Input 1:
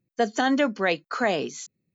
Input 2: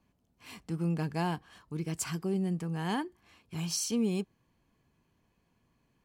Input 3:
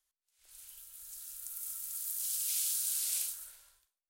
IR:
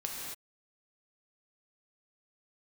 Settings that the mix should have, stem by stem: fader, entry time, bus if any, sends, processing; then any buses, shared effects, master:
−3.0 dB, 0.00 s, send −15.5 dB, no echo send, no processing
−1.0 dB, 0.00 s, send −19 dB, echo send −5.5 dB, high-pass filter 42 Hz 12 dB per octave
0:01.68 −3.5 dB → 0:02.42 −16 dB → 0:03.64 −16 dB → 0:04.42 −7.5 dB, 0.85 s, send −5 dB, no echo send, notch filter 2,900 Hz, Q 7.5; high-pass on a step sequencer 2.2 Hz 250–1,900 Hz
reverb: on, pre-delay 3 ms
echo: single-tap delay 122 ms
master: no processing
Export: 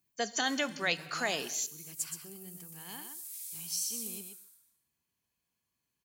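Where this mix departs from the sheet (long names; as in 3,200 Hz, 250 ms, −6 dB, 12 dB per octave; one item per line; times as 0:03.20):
stem 1 −3.0 dB → +5.0 dB
master: extra first-order pre-emphasis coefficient 0.9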